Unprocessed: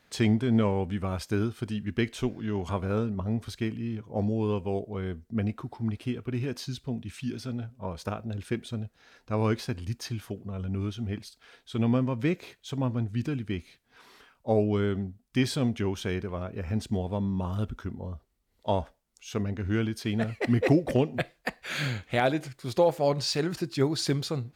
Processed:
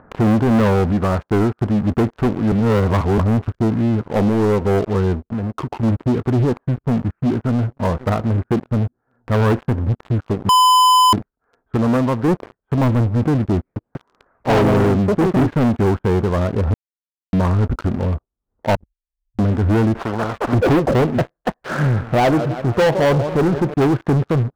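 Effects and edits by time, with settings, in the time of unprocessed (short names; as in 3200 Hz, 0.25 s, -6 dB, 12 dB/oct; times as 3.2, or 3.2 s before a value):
0.92–1.61 low shelf 110 Hz -8 dB
2.52–3.18 reverse
4.08–4.62 HPF 130 Hz 6 dB/oct
5.19–5.83 compressor 12:1, threshold -37 dBFS
7.2–7.8 echo throw 0.54 s, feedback 50%, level -17 dB
10.49–11.13 bleep 1010 Hz -10.5 dBFS
11.77–12.28 low shelf 310 Hz -9.5 dB
13.57–15.79 echoes that change speed 0.19 s, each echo +4 st, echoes 2
16.74–17.33 mute
18.75–19.39 inverse Chebyshev band-stop 270–2800 Hz, stop band 80 dB
19.95–20.53 spectral compressor 4:1
21.71–23.74 warbling echo 0.165 s, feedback 59%, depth 158 cents, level -17 dB
whole clip: steep low-pass 1400 Hz 36 dB/oct; sample leveller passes 5; upward compressor, threshold -27 dBFS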